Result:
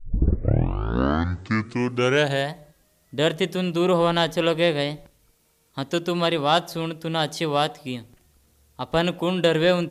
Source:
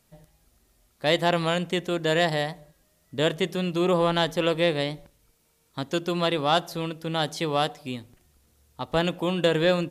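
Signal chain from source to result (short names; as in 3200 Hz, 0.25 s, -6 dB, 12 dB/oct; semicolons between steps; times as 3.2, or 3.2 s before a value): tape start at the beginning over 2.57 s; gain +2.5 dB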